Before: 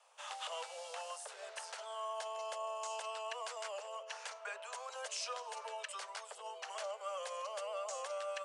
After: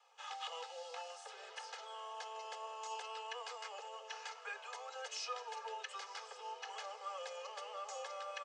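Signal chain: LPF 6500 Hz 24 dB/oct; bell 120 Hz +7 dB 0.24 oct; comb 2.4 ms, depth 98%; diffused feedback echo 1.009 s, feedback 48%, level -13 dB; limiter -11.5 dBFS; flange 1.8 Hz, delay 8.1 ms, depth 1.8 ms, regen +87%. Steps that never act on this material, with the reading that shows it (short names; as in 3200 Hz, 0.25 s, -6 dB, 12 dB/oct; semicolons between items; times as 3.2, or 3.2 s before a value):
bell 120 Hz: input band starts at 380 Hz; limiter -11.5 dBFS: input peak -25.0 dBFS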